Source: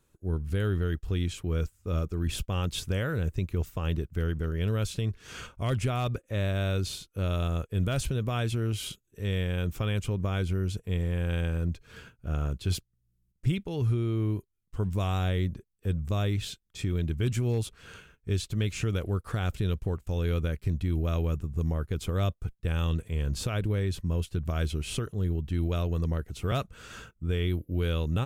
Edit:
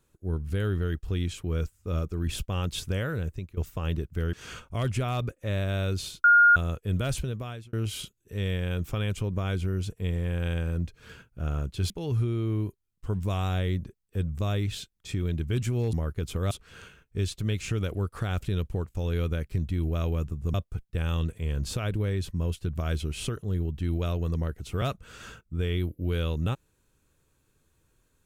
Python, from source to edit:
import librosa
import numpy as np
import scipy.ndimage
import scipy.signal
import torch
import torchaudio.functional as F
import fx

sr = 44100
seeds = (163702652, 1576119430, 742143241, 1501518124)

y = fx.edit(x, sr, fx.fade_out_to(start_s=2.95, length_s=0.62, curve='qsin', floor_db=-17.0),
    fx.cut(start_s=4.33, length_s=0.87),
    fx.bleep(start_s=7.11, length_s=0.32, hz=1420.0, db=-13.5),
    fx.fade_out_span(start_s=8.02, length_s=0.58),
    fx.cut(start_s=12.77, length_s=0.83),
    fx.move(start_s=21.66, length_s=0.58, to_s=17.63), tone=tone)